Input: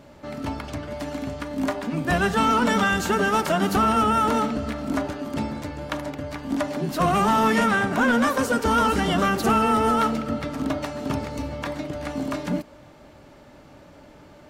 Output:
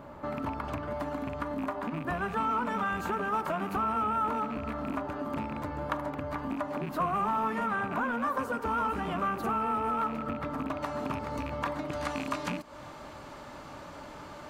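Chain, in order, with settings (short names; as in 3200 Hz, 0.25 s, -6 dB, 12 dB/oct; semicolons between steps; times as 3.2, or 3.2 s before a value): rattling part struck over -28 dBFS, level -21 dBFS; bell 6000 Hz -10.5 dB 2.5 oct, from 10.7 s -4 dB, from 11.91 s +5.5 dB; compressor 6:1, threshold -33 dBFS, peak gain reduction 14.5 dB; bell 1100 Hz +10 dB 0.94 oct; notch 5500 Hz, Q 26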